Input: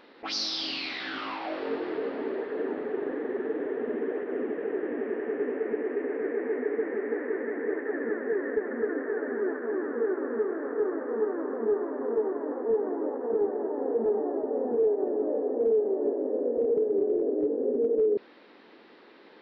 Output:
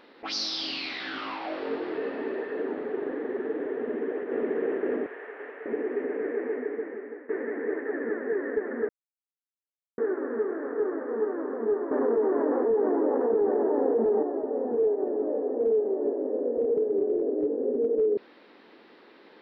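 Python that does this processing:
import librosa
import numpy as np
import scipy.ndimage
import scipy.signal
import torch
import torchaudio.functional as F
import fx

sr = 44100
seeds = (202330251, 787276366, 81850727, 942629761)

y = fx.small_body(x, sr, hz=(1800.0, 2600.0), ring_ms=45, db=10, at=(1.95, 2.6))
y = fx.echo_throw(y, sr, start_s=3.77, length_s=0.65, ms=540, feedback_pct=60, wet_db=0.0)
y = fx.highpass(y, sr, hz=900.0, slope=12, at=(5.06, 5.66))
y = fx.env_flatten(y, sr, amount_pct=70, at=(11.91, 14.23))
y = fx.edit(y, sr, fx.fade_out_to(start_s=6.41, length_s=0.88, floor_db=-15.5),
    fx.silence(start_s=8.89, length_s=1.09), tone=tone)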